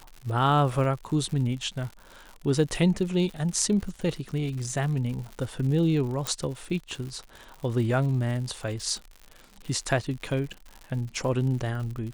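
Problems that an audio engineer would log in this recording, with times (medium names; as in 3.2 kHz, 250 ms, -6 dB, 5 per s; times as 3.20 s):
crackle 110 per s -35 dBFS
6.27 s: pop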